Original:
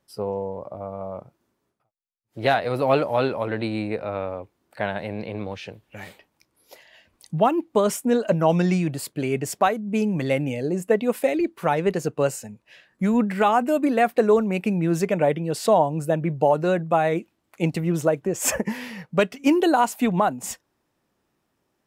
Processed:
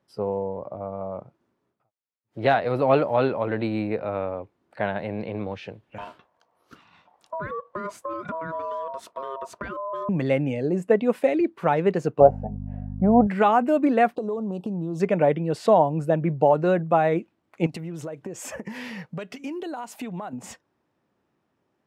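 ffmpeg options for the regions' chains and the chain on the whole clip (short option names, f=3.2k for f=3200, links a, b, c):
-filter_complex "[0:a]asettb=1/sr,asplit=3[a][b][c];[a]atrim=end=5.984[d];[b]atrim=start=5.98:end=10.09,asetpts=PTS-STARTPTS,afade=t=in:d=0.004:c=qsin,afade=t=out:st=4.106:d=0.004:c=qsin,lowshelf=f=290:g=11.5,acompressor=threshold=-27dB:ratio=6:attack=3.2:release=140:knee=1:detection=peak,aeval=exprs='val(0)*sin(2*PI*810*n/s)':c=same[e];[c]atrim=start=10.086[f];[d][e]acrossfade=d=0.004:c1=hsin:c2=qsin[g];[g][f]acrossfade=d=0.004:c1=qsin:c2=hsin,asettb=1/sr,asplit=3[h][i][j];[h]atrim=end=12.204[k];[i]atrim=start=12.2:end=13.27,asetpts=PTS-STARTPTS,afade=t=in:d=0.004:c=qsin,afade=t=out:st=1.066:d=0.004:c=qsin,lowpass=f=730:t=q:w=8.9,aeval=exprs='val(0)+0.0398*(sin(2*PI*50*n/s)+sin(2*PI*2*50*n/s)/2+sin(2*PI*3*50*n/s)/3+sin(2*PI*4*50*n/s)/4+sin(2*PI*5*50*n/s)/5)':c=same[l];[j]atrim=start=13.266[m];[k][l]acrossfade=d=0.004:c1=hsin:c2=qsin[n];[n][m]acrossfade=d=0.004:c1=qsin:c2=hsin,asettb=1/sr,asplit=3[o][p][q];[o]atrim=end=14.154[r];[p]atrim=start=14.15:end=15,asetpts=PTS-STARTPTS,afade=t=in:d=0.004:c=qsin,afade=t=out:st=0.846:d=0.004:c=qsin,asuperstop=centerf=1900:order=8:qfactor=0.99,acompressor=threshold=-26dB:ratio=6:attack=3.2:release=140:knee=1:detection=peak[s];[q]atrim=start=14.996[t];[r][s]acrossfade=d=0.004:c1=hsin:c2=qsin[u];[u][t]acrossfade=d=0.004:c1=qsin:c2=hsin,asettb=1/sr,asplit=3[v][w][x];[v]atrim=end=17.664[y];[w]atrim=start=17.66:end=20.33,asetpts=PTS-STARTPTS,afade=t=in:d=0.004:c=qsin,afade=t=out:st=2.666:d=0.004:c=qsin,acompressor=threshold=-31dB:ratio=8:attack=3.2:release=140:knee=1:detection=peak,highshelf=f=3.5k:g=9.5[z];[x]atrim=start=20.326[aa];[y][z]acrossfade=d=0.004:c1=hsin:c2=qsin[ab];[ab][aa]acrossfade=d=0.004:c1=qsin:c2=hsin,highpass=80,aemphasis=mode=reproduction:type=75fm"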